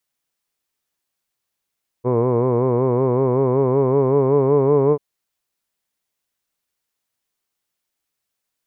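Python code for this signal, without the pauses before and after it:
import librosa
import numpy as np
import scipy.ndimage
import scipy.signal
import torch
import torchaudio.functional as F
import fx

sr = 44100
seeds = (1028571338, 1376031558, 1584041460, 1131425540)

y = fx.vowel(sr, seeds[0], length_s=2.94, word='hood', hz=120.0, glide_st=3.0, vibrato_hz=5.3, vibrato_st=0.9)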